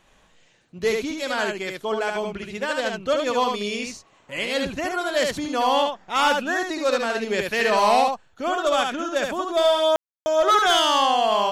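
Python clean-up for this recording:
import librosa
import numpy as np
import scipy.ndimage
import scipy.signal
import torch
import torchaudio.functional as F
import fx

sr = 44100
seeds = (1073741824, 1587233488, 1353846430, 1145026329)

y = fx.fix_ambience(x, sr, seeds[0], print_start_s=0.23, print_end_s=0.73, start_s=9.96, end_s=10.26)
y = fx.fix_echo_inverse(y, sr, delay_ms=73, level_db=-4.0)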